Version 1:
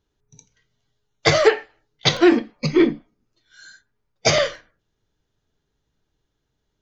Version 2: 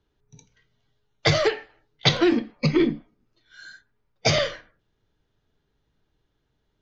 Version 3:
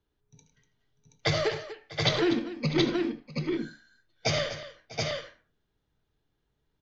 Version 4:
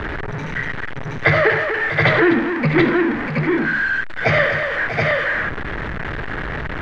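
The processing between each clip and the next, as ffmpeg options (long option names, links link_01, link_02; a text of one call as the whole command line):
ffmpeg -i in.wav -filter_complex "[0:a]lowpass=4300,acrossover=split=230|3200[link_01][link_02][link_03];[link_02]acompressor=threshold=-23dB:ratio=6[link_04];[link_01][link_04][link_03]amix=inputs=3:normalize=0,volume=2dB" out.wav
ffmpeg -i in.wav -af "aecho=1:1:72|104|244|647|726|803:0.251|0.224|0.211|0.119|0.668|0.126,volume=-7dB" out.wav
ffmpeg -i in.wav -af "aeval=exprs='val(0)+0.5*0.0422*sgn(val(0))':channel_layout=same,lowpass=frequency=1800:width_type=q:width=3.3,volume=7.5dB" out.wav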